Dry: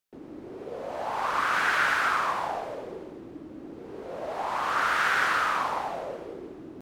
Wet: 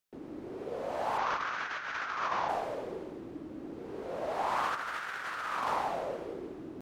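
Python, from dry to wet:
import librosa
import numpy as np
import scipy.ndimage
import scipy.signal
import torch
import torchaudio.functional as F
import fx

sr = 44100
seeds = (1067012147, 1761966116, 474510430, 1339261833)

y = fx.ellip_lowpass(x, sr, hz=6300.0, order=4, stop_db=60, at=(1.17, 2.48), fade=0.02)
y = fx.over_compress(y, sr, threshold_db=-29.0, ratio=-0.5)
y = y * librosa.db_to_amplitude(-3.5)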